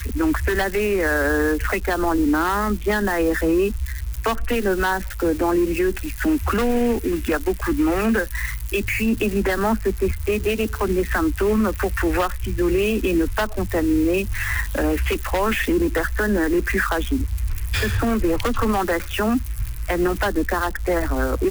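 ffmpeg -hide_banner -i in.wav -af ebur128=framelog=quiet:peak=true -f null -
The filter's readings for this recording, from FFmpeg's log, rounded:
Integrated loudness:
  I:         -21.6 LUFS
  Threshold: -31.6 LUFS
Loudness range:
  LRA:         1.6 LU
  Threshold: -41.6 LUFS
  LRA low:   -22.3 LUFS
  LRA high:  -20.7 LUFS
True peak:
  Peak:      -10.8 dBFS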